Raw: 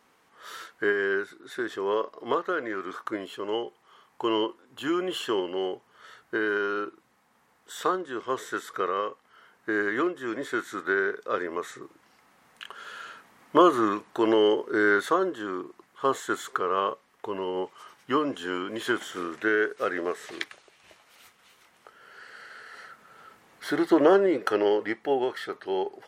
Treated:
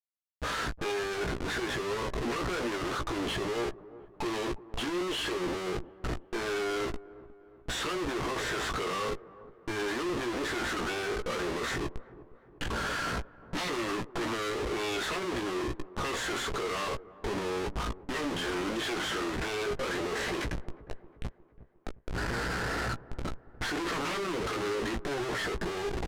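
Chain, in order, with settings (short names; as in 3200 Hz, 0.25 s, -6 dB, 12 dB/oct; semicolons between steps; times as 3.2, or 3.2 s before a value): expander -56 dBFS; spectral noise reduction 10 dB; wavefolder -22.5 dBFS; hum 60 Hz, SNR 31 dB; Schmitt trigger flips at -46.5 dBFS; air absorption 52 m; doubler 17 ms -7 dB; on a send: dark delay 0.358 s, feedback 49%, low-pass 1000 Hz, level -17 dB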